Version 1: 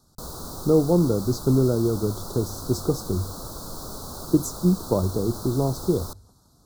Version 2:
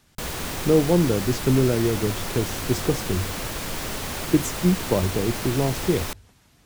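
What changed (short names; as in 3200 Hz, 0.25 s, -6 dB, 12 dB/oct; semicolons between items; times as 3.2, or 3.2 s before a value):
background +5.0 dB; master: remove elliptic band-stop 1300–4100 Hz, stop band 70 dB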